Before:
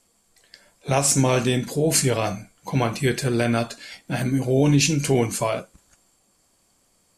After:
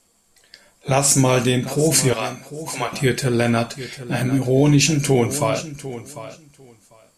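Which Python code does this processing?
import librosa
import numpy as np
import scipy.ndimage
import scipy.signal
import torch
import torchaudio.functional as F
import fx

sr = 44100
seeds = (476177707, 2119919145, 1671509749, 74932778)

y = fx.high_shelf(x, sr, hz=12000.0, db=10.5, at=(1.11, 1.52))
y = fx.bessel_highpass(y, sr, hz=780.0, order=2, at=(2.13, 2.93))
y = fx.echo_feedback(y, sr, ms=748, feedback_pct=16, wet_db=-14.0)
y = F.gain(torch.from_numpy(y), 3.0).numpy()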